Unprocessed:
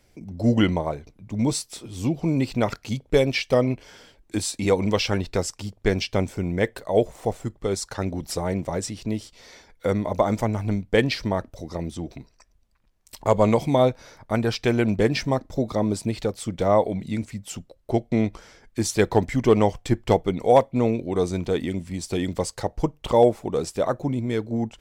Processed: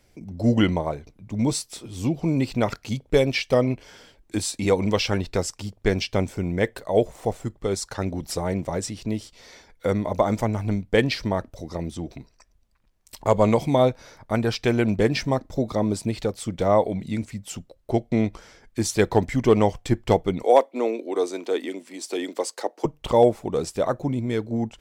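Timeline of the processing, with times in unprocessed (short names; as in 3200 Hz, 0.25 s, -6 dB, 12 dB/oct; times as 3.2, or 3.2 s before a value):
20.43–22.85 steep high-pass 280 Hz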